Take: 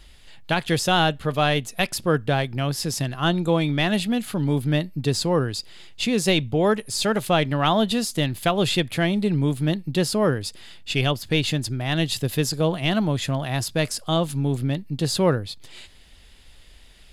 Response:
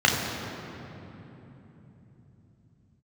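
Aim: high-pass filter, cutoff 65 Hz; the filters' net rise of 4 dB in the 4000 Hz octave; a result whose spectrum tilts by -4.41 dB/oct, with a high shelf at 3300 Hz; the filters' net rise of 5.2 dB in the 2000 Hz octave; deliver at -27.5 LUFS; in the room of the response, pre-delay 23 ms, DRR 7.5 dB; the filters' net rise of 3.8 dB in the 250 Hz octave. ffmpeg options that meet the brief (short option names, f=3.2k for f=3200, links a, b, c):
-filter_complex "[0:a]highpass=65,equalizer=f=250:t=o:g=5.5,equalizer=f=2k:t=o:g=7.5,highshelf=f=3.3k:g=-9,equalizer=f=4k:t=o:g=8.5,asplit=2[a][b];[1:a]atrim=start_sample=2205,adelay=23[c];[b][c]afir=irnorm=-1:irlink=0,volume=-26.5dB[d];[a][d]amix=inputs=2:normalize=0,volume=-8.5dB"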